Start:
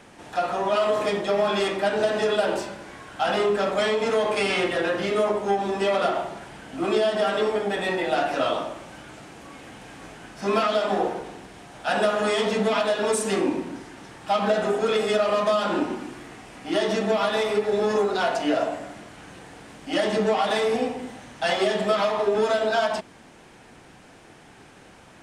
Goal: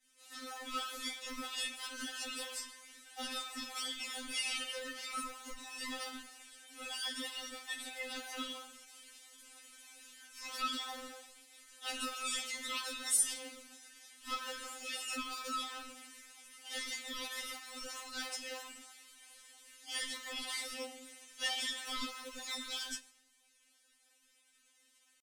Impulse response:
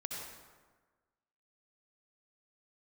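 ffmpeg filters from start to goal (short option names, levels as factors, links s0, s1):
-filter_complex "[0:a]aderivative,acrossover=split=1000[s0][s1];[s0]acrusher=samples=37:mix=1:aa=0.000001:lfo=1:lforange=37:lforate=3.1[s2];[s2][s1]amix=inputs=2:normalize=0,asetrate=45392,aresample=44100,atempo=0.971532,agate=range=0.0224:threshold=0.002:ratio=3:detection=peak,asplit=2[s3][s4];[1:a]atrim=start_sample=2205[s5];[s4][s5]afir=irnorm=-1:irlink=0,volume=0.0944[s6];[s3][s6]amix=inputs=2:normalize=0,afftfilt=real='re*3.46*eq(mod(b,12),0)':imag='im*3.46*eq(mod(b,12),0)':win_size=2048:overlap=0.75,volume=1.12"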